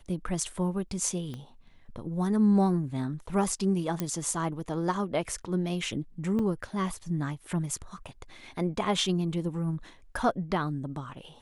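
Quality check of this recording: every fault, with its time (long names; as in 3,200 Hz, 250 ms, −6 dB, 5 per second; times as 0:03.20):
0:01.34: click −26 dBFS
0:04.00: click −15 dBFS
0:06.39: drop-out 3.8 ms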